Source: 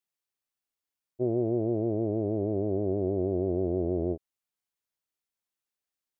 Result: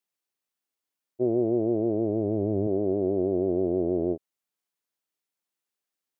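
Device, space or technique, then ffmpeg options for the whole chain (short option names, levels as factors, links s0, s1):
filter by subtraction: -filter_complex "[0:a]asettb=1/sr,asplit=3[s0][s1][s2];[s0]atrim=end=1.944[s3];[s1]atrim=start=1.94:end=2.67,asetpts=PTS-STARTPTS,afade=t=in:d=0.004:c=qsin,afade=t=out:st=0.726:d=0.004:c=qsin,asubboost=boost=8.5:cutoff=210[s4];[s2]atrim=start=2.666[s5];[s3][s4]acrossfade=d=0.004:c1=hsin:c2=qsin[s6];[s6][s5]acrossfade=d=0.004:c1=qsin:c2=hsin,asplit=2[s7][s8];[s8]lowpass=270,volume=-1[s9];[s7][s9]amix=inputs=2:normalize=0,volume=1.19"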